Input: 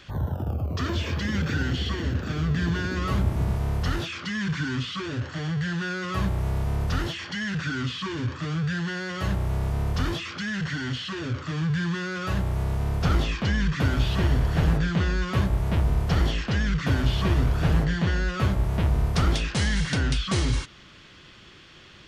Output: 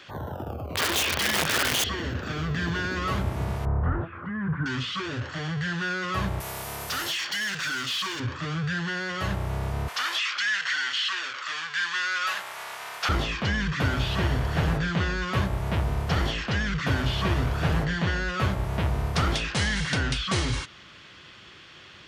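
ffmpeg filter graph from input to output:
ffmpeg -i in.wav -filter_complex "[0:a]asettb=1/sr,asplit=3[link_01][link_02][link_03];[link_01]atrim=end=0.694[link_04];[link_02]atrim=start=0.69:end=1.84,asetpts=PTS-STARTPTS,afade=type=in:duration=0.004:curve=qsin,afade=type=out:start_time=1.146:duration=0.004:curve=qsin,equalizer=frequency=3300:width_type=o:width=1.5:gain=9,bandreject=frequency=60:width_type=h:width=6,bandreject=frequency=120:width_type=h:width=6,aeval=exprs='(mod(9.44*val(0)+1,2)-1)/9.44':channel_layout=same[link_05];[link_03]atrim=start=1.836[link_06];[link_04][link_05]acrossfade=duration=0.004:curve1=hsin:curve2=qsin[link_07];[link_07][link_06]acrossfade=duration=0.004:curve1=qsin:curve2=hsin,asettb=1/sr,asplit=3[link_08][link_09][link_10];[link_08]atrim=end=3.654[link_11];[link_09]atrim=start=3.65:end=4.66,asetpts=PTS-STARTPTS,afade=type=in:duration=0.004:curve=qsin,afade=type=out:start_time=1.006:duration=0.004:curve=qsin,lowpass=frequency=1400:width=0.5412,lowpass=frequency=1400:width=1.3066,lowshelf=frequency=120:gain=9[link_12];[link_10]atrim=start=4.656[link_13];[link_11][link_12]acrossfade=duration=0.004:curve1=hsin:curve2=qsin[link_14];[link_14][link_13]acrossfade=duration=0.004:curve1=qsin:curve2=hsin,asettb=1/sr,asplit=3[link_15][link_16][link_17];[link_15]atrim=end=6.404[link_18];[link_16]atrim=start=6.4:end=8.2,asetpts=PTS-STARTPTS,afade=type=in:duration=0.004:curve=qsin,afade=type=out:start_time=1.796:duration=0.004:curve=qsin,aemphasis=mode=production:type=riaa,asoftclip=type=hard:threshold=-27dB[link_19];[link_17]atrim=start=8.196[link_20];[link_18][link_19]acrossfade=duration=0.004:curve1=hsin:curve2=qsin[link_21];[link_21][link_20]acrossfade=duration=0.004:curve1=qsin:curve2=hsin,asettb=1/sr,asplit=3[link_22][link_23][link_24];[link_22]atrim=end=9.884[link_25];[link_23]atrim=start=9.88:end=13.09,asetpts=PTS-STARTPTS,afade=type=in:duration=0.004:curve=qsin,afade=type=out:start_time=3.206:duration=0.004:curve=qsin,highpass=1300,acontrast=51[link_26];[link_24]atrim=start=13.086[link_27];[link_25][link_26]acrossfade=duration=0.004:curve1=hsin:curve2=qsin[link_28];[link_28][link_27]acrossfade=duration=0.004:curve1=qsin:curve2=hsin,asubboost=boost=2.5:cutoff=180,highpass=76,bass=frequency=250:gain=-12,treble=frequency=4000:gain=-3,volume=3dB" out.wav

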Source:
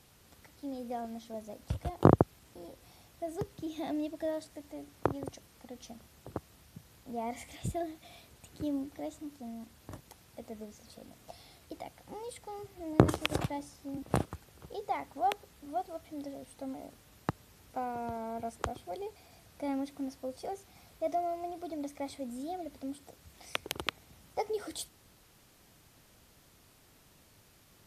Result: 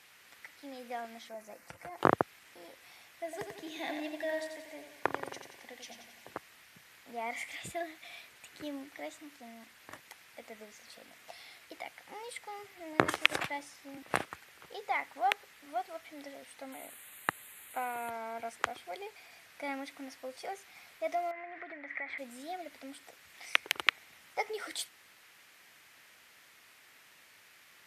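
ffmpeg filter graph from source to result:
ffmpeg -i in.wav -filter_complex "[0:a]asettb=1/sr,asplit=3[link_01][link_02][link_03];[link_01]atrim=end=1.294[link_04];[link_02]atrim=start=1.29:end=1.98,asetpts=PTS-STARTPTS,afade=type=in:duration=0.004:curve=qsin,afade=type=out:start_time=0.686:duration=0.004:curve=qsin,equalizer=frequency=3400:width_type=o:width=0.65:gain=-13,acompressor=threshold=-38dB:ratio=2.5:attack=3.2:release=140:knee=1:detection=peak,aecho=1:1:5.8:0.35,atrim=end_sample=30429[link_05];[link_03]atrim=start=1.976[link_06];[link_04][link_05]acrossfade=duration=0.004:curve1=hsin:curve2=qsin[link_07];[link_07][link_06]acrossfade=duration=0.004:curve1=qsin:curve2=hsin,asettb=1/sr,asplit=3[link_08][link_09][link_10];[link_08]atrim=end=3.244[link_11];[link_09]atrim=start=3.24:end=6.35,asetpts=PTS-STARTPTS,afade=type=in:duration=0.004:curve=qsin,afade=type=out:start_time=3.106:duration=0.004:curve=qsin,asuperstop=centerf=1300:order=4:qfactor=6.7,aecho=1:1:89|178|267|356|445|534|623:0.501|0.266|0.141|0.0746|0.0395|0.021|0.0111,atrim=end_sample=137151[link_12];[link_10]atrim=start=6.346[link_13];[link_11][link_12]acrossfade=duration=0.004:curve1=hsin:curve2=qsin[link_14];[link_14][link_13]acrossfade=duration=0.004:curve1=qsin:curve2=hsin,asettb=1/sr,asplit=3[link_15][link_16][link_17];[link_15]atrim=end=16.724[link_18];[link_16]atrim=start=16.72:end=18.1,asetpts=PTS-STARTPTS,afade=type=in:duration=0.004:curve=qsin,afade=type=out:start_time=1.376:duration=0.004:curve=qsin,asuperstop=centerf=5400:order=4:qfactor=1.6,equalizer=frequency=11000:width=0.5:gain=15[link_19];[link_17]atrim=start=18.096[link_20];[link_18][link_19]acrossfade=duration=0.004:curve1=hsin:curve2=qsin[link_21];[link_21][link_20]acrossfade=duration=0.004:curve1=qsin:curve2=hsin,asettb=1/sr,asplit=3[link_22][link_23][link_24];[link_22]atrim=end=21.314[link_25];[link_23]atrim=start=21.31:end=22.18,asetpts=PTS-STARTPTS,afade=type=in:duration=0.004:curve=qsin,afade=type=out:start_time=0.866:duration=0.004:curve=qsin,lowpass=frequency=1900:width_type=q:width=6.6,acompressor=threshold=-40dB:ratio=6:attack=3.2:release=140:knee=1:detection=peak[link_26];[link_24]atrim=start=22.176[link_27];[link_25][link_26]acrossfade=duration=0.004:curve1=hsin:curve2=qsin[link_28];[link_28][link_27]acrossfade=duration=0.004:curve1=qsin:curve2=hsin,highpass=frequency=720:poles=1,equalizer=frequency=2000:width_type=o:width=1.3:gain=12.5" out.wav

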